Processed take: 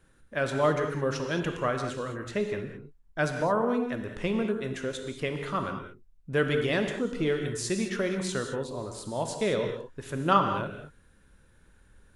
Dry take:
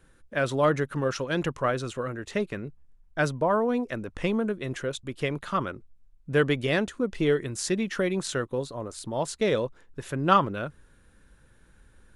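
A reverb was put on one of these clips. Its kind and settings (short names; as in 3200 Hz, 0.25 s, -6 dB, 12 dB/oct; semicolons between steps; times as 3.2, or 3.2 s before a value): non-linear reverb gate 0.24 s flat, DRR 4.5 dB; gain -3 dB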